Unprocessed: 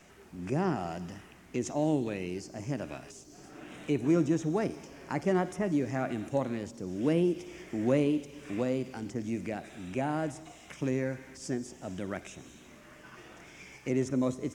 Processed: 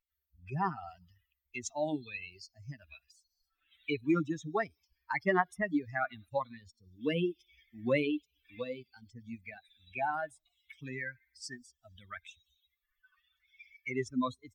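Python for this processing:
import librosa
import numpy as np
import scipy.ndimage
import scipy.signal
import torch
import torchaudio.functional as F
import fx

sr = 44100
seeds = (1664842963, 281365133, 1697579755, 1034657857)

y = fx.bin_expand(x, sr, power=3.0)
y = fx.graphic_eq(y, sr, hz=(1000, 2000, 4000), db=(9, 11, 9))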